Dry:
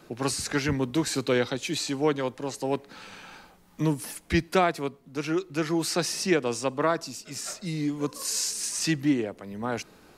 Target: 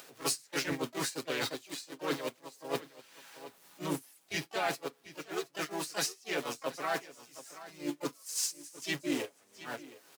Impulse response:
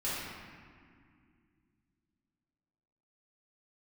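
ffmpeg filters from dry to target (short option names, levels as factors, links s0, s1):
-filter_complex "[0:a]aeval=exprs='val(0)+0.5*0.0224*sgn(val(0))':c=same,agate=range=0.0251:threshold=0.0631:ratio=16:detection=peak,highpass=f=550:p=1,areverse,acompressor=threshold=0.0158:ratio=4,areverse,highshelf=f=2900:g=5,aecho=1:1:721:0.119,asplit=2[s0][s1];[1:a]atrim=start_sample=2205,atrim=end_sample=3528,asetrate=79380,aresample=44100[s2];[s1][s2]afir=irnorm=-1:irlink=0,volume=0.168[s3];[s0][s3]amix=inputs=2:normalize=0,acompressor=mode=upward:threshold=0.00562:ratio=2.5,aecho=1:1:7.3:0.48,asplit=3[s4][s5][s6];[s5]asetrate=52444,aresample=44100,atempo=0.840896,volume=0.708[s7];[s6]asetrate=88200,aresample=44100,atempo=0.5,volume=0.224[s8];[s4][s7][s8]amix=inputs=3:normalize=0"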